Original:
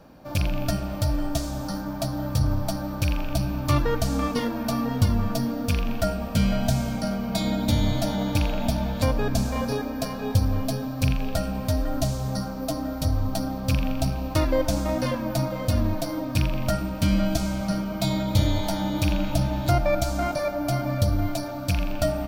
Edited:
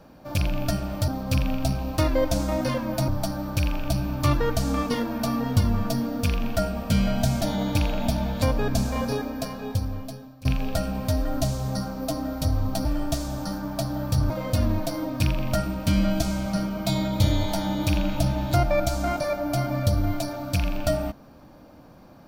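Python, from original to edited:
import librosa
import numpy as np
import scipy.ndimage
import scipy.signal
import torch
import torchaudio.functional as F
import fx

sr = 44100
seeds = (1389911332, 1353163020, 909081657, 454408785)

y = fx.edit(x, sr, fx.swap(start_s=1.08, length_s=1.45, other_s=13.45, other_length_s=2.0),
    fx.cut(start_s=6.86, length_s=1.15),
    fx.fade_out_to(start_s=9.75, length_s=1.3, floor_db=-22.5), tone=tone)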